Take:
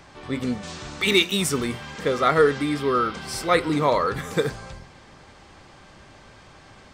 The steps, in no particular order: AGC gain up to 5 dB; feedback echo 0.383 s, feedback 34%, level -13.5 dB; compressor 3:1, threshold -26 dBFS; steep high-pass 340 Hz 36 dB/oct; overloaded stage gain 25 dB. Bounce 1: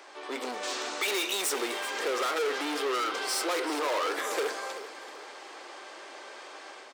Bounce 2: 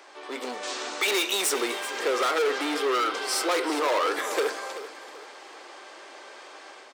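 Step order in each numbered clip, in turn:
AGC > overloaded stage > steep high-pass > compressor > feedback echo; overloaded stage > steep high-pass > compressor > AGC > feedback echo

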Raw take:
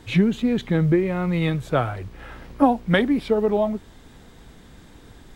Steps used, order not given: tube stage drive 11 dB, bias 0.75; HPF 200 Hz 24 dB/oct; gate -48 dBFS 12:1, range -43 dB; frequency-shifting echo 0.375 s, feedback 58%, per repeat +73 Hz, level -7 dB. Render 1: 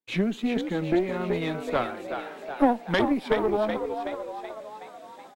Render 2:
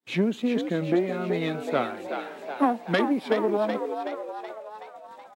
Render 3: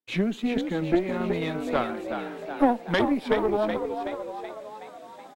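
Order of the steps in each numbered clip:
HPF > frequency-shifting echo > tube stage > gate; tube stage > gate > HPF > frequency-shifting echo; frequency-shifting echo > HPF > tube stage > gate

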